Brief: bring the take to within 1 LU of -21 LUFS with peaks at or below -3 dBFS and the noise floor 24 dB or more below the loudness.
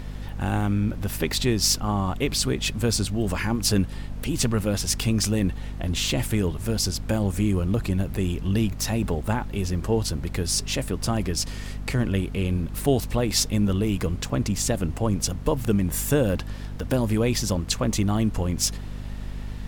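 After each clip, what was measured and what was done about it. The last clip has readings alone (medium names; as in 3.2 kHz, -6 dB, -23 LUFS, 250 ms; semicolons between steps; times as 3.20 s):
hum 50 Hz; highest harmonic 250 Hz; hum level -32 dBFS; noise floor -34 dBFS; noise floor target -49 dBFS; loudness -25.0 LUFS; peak level -6.5 dBFS; loudness target -21.0 LUFS
-> hum notches 50/100/150/200/250 Hz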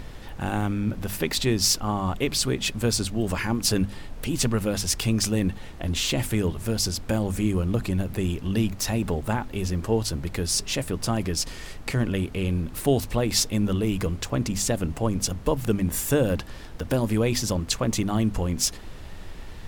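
hum not found; noise floor -39 dBFS; noise floor target -50 dBFS
-> noise print and reduce 11 dB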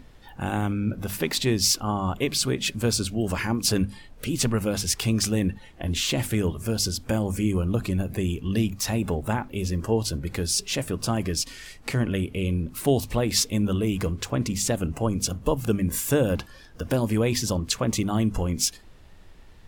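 noise floor -48 dBFS; noise floor target -50 dBFS
-> noise print and reduce 6 dB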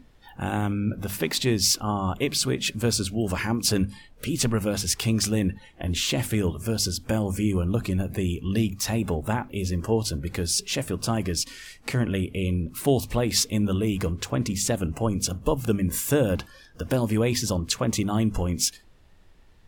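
noise floor -53 dBFS; loudness -25.5 LUFS; peak level -6.5 dBFS; loudness target -21.0 LUFS
-> trim +4.5 dB; peak limiter -3 dBFS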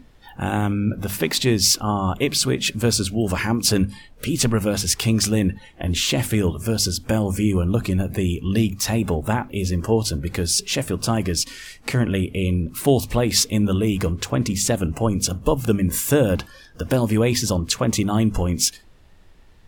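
loudness -21.0 LUFS; peak level -3.0 dBFS; noise floor -48 dBFS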